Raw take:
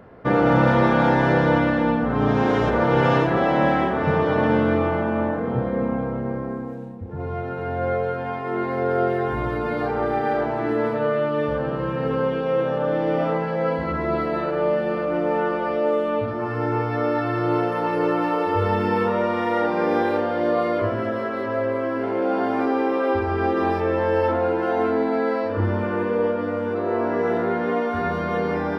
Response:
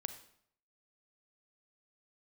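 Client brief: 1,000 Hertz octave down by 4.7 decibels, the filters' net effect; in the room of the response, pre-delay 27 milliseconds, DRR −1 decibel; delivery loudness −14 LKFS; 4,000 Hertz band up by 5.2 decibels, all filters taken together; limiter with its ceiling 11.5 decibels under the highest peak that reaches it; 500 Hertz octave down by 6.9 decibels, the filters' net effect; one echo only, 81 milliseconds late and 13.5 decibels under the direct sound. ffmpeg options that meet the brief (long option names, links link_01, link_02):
-filter_complex "[0:a]equalizer=frequency=500:width_type=o:gain=-7.5,equalizer=frequency=1000:width_type=o:gain=-4,equalizer=frequency=4000:width_type=o:gain=7.5,alimiter=limit=-19.5dB:level=0:latency=1,aecho=1:1:81:0.211,asplit=2[link_01][link_02];[1:a]atrim=start_sample=2205,adelay=27[link_03];[link_02][link_03]afir=irnorm=-1:irlink=0,volume=2.5dB[link_04];[link_01][link_04]amix=inputs=2:normalize=0,volume=10dB"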